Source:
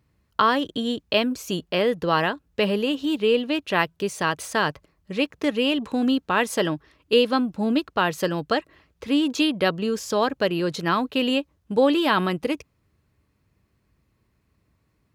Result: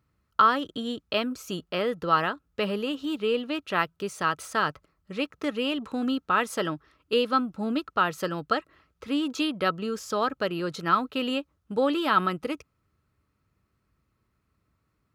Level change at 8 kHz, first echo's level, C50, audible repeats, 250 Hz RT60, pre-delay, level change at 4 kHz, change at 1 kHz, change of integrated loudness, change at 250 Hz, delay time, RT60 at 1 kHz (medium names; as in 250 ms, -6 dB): -6.0 dB, no echo, no reverb, no echo, no reverb, no reverb, -6.0 dB, -0.5 dB, -4.0 dB, -6.0 dB, no echo, no reverb